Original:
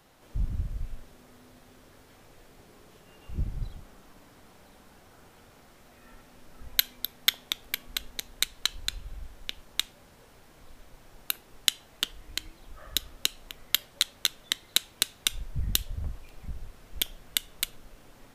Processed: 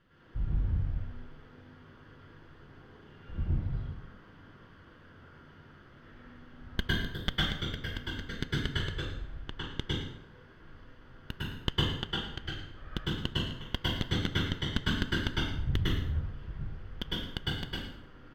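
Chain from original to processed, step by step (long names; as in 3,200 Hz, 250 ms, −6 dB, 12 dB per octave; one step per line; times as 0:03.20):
lower of the sound and its delayed copy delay 0.64 ms
high-frequency loss of the air 310 metres
on a send: single-tap delay 108 ms −14 dB
on the sum: dense smooth reverb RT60 0.7 s, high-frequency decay 0.8×, pre-delay 95 ms, DRR −7 dB
level −3.5 dB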